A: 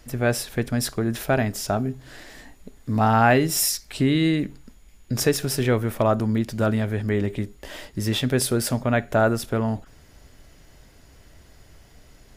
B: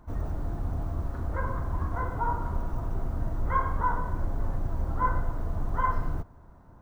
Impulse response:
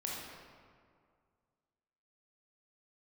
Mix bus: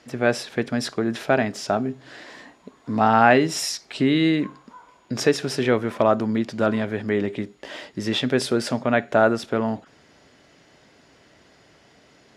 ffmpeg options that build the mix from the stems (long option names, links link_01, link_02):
-filter_complex "[0:a]volume=2.5dB[link_01];[1:a]highpass=340,adelay=900,volume=-18dB[link_02];[link_01][link_02]amix=inputs=2:normalize=0,highpass=200,lowpass=5200"